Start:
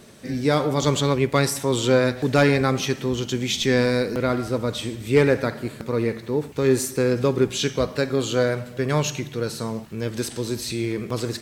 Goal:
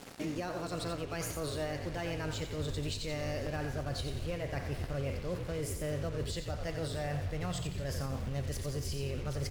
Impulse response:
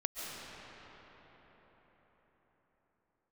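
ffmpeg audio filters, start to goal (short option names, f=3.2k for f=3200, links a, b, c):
-filter_complex "[0:a]areverse,acompressor=threshold=-28dB:ratio=20,areverse,asplit=5[a][b][c][d][e];[b]adelay=107,afreqshift=-44,volume=-8dB[f];[c]adelay=214,afreqshift=-88,volume=-18.5dB[g];[d]adelay=321,afreqshift=-132,volume=-28.9dB[h];[e]adelay=428,afreqshift=-176,volume=-39.4dB[i];[a][f][g][h][i]amix=inputs=5:normalize=0,asubboost=boost=10:cutoff=67,acrusher=bits=6:mix=0:aa=0.5,asplit=2[j][k];[1:a]atrim=start_sample=2205,lowpass=8.4k[l];[k][l]afir=irnorm=-1:irlink=0,volume=-16.5dB[m];[j][m]amix=inputs=2:normalize=0,asetrate=52920,aresample=44100,highshelf=f=7.5k:g=-5.5,alimiter=level_in=3dB:limit=-24dB:level=0:latency=1:release=423,volume=-3dB"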